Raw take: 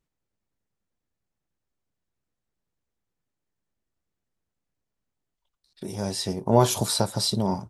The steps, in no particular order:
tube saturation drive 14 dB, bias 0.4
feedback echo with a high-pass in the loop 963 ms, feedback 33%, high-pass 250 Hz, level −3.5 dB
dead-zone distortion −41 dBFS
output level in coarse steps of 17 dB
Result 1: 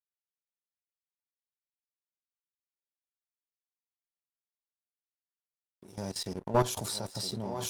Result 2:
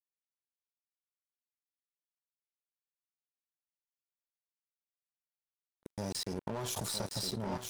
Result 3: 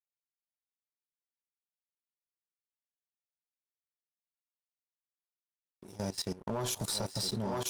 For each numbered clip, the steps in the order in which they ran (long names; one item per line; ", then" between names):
feedback echo with a high-pass in the loop, then dead-zone distortion, then output level in coarse steps, then tube saturation
tube saturation, then output level in coarse steps, then feedback echo with a high-pass in the loop, then dead-zone distortion
tube saturation, then dead-zone distortion, then feedback echo with a high-pass in the loop, then output level in coarse steps